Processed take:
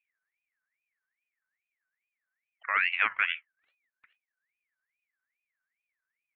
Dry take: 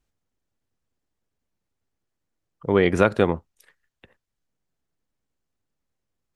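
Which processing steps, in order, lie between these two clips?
low-pass 1 kHz 24 dB/octave; ring modulator with a swept carrier 2 kHz, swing 25%, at 2.4 Hz; trim -5.5 dB

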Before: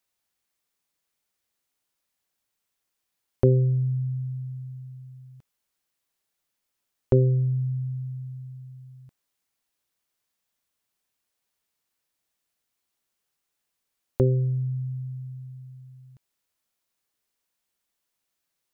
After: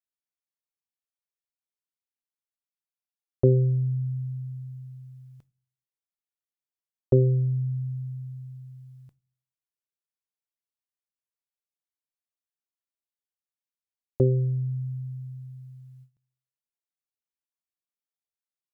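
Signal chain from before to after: gate with hold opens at -44 dBFS; on a send: reverberation RT60 0.30 s, pre-delay 6 ms, DRR 22 dB

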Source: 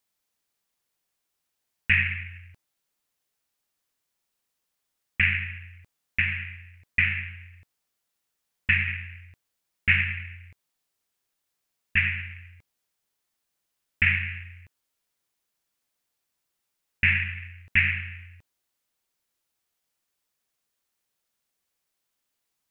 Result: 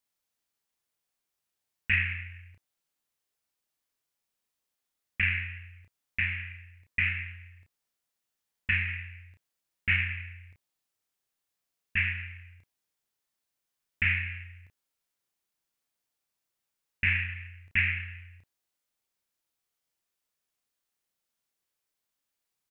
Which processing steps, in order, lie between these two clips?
doubling 32 ms -4 dB; trim -6 dB

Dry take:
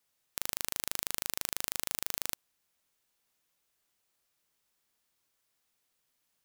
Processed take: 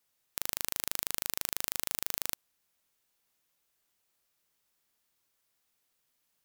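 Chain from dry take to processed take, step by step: peaking EQ 15 kHz +3.5 dB 0.36 oct

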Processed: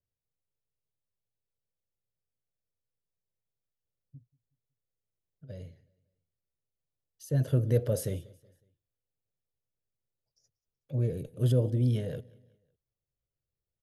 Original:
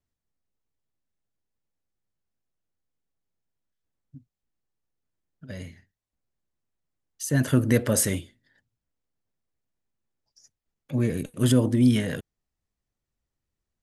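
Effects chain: graphic EQ 125/250/500/1000/2000/8000 Hz +8/-9/+9/-8/-10/-12 dB; feedback delay 185 ms, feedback 43%, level -24 dB; trim -8 dB

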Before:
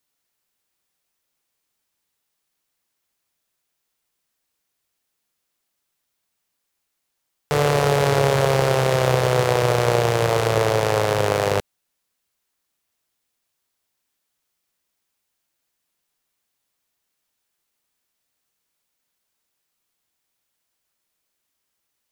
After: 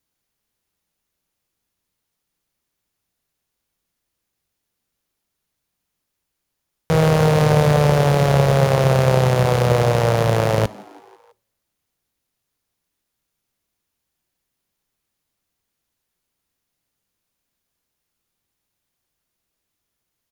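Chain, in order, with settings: bass shelf 280 Hz +11 dB; on a send: frequency-shifting echo 179 ms, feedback 62%, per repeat +84 Hz, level -23.5 dB; on the sum: two-slope reverb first 0.32 s, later 1.8 s, from -27 dB, DRR 20 dB; speed mistake 44.1 kHz file played as 48 kHz; band-stop 7.9 kHz, Q 15; trim -1.5 dB

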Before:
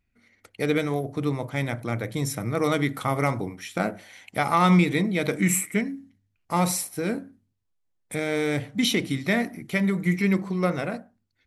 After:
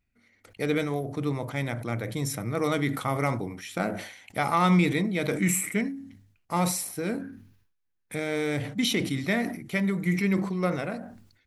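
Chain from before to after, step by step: 7.21–8.14 s: graphic EQ with 31 bands 630 Hz -10 dB, 1.6 kHz +8 dB, 2.5 kHz +4 dB, 8 kHz -9 dB; decay stretcher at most 74 dB/s; trim -3 dB

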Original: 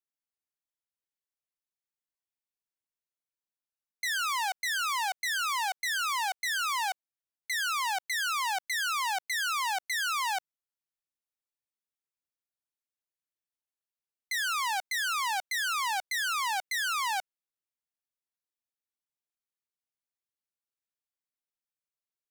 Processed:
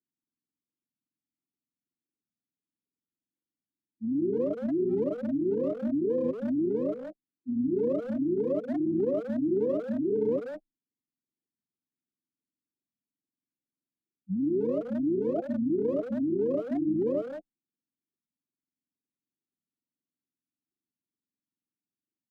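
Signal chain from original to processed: spectrum inverted on a logarithmic axis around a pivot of 690 Hz; spectral gate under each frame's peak -20 dB strong; 8.92–10.36 s: dynamic bell 950 Hz, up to +6 dB, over -49 dBFS, Q 1.1; peak limiter -24.5 dBFS, peak gain reduction 6.5 dB; high-pass 290 Hz 24 dB/octave; tilt EQ -2 dB/octave; speakerphone echo 180 ms, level -7 dB; frequency shift -14 Hz; warped record 45 rpm, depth 250 cents; trim +5.5 dB

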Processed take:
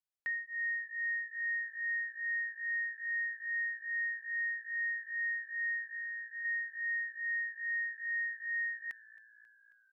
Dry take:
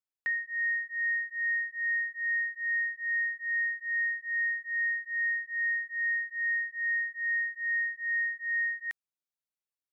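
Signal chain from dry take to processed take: 5.93–6.45 s: compression, threshold -34 dBFS, peak gain reduction 6.5 dB; frequency-shifting echo 270 ms, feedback 65%, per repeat -57 Hz, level -21 dB; trim -5.5 dB

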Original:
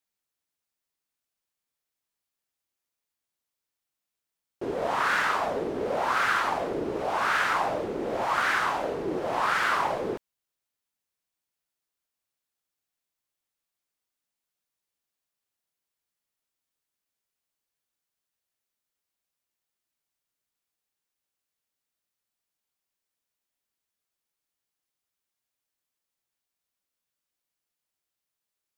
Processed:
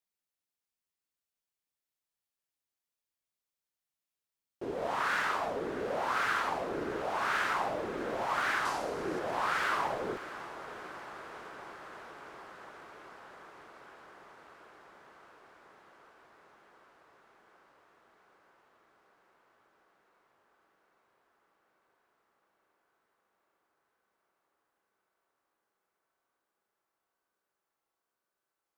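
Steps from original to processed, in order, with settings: 8.65–9.19 s: high-order bell 7.2 kHz +8.5 dB; on a send: echo that smears into a reverb 660 ms, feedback 80%, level -15 dB; on the sum: trim -6 dB

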